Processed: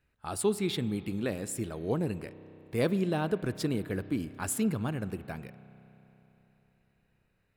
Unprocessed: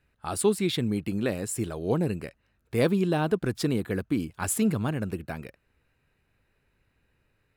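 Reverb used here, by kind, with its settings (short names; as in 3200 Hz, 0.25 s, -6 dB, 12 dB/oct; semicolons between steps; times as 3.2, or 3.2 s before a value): spring tank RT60 3.8 s, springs 31 ms, chirp 35 ms, DRR 14.5 dB; gain -4.5 dB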